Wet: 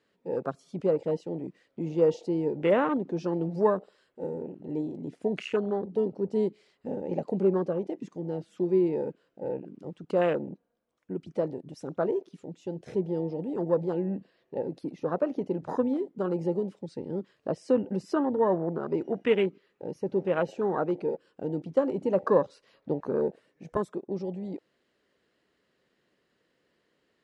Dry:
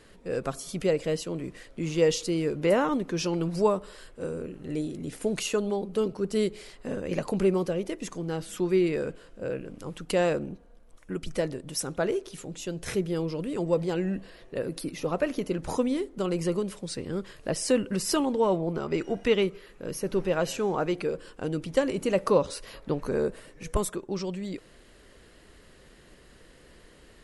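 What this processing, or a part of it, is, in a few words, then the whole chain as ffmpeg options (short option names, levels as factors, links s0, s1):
over-cleaned archive recording: -filter_complex "[0:a]highpass=160,lowpass=5500,afwtdn=0.0224,asettb=1/sr,asplit=3[s0][s1][s2];[s0]atrim=end=18.134[s3];[s1]atrim=start=18.13:end=18.83,asetpts=PTS-STARTPTS,afade=t=in:d=0.004:c=qsin,afade=t=out:st=0.696:d=0.004:c=qsin,highshelf=f=5100:g=-10.5[s4];[s2]atrim=start=18.826[s5];[s3][s4]acrossfade=d=0.004:c1=hsin:c2=qsin[s6];[s6][s5]acrossfade=d=0.004:c1=qsin:c2=hsin"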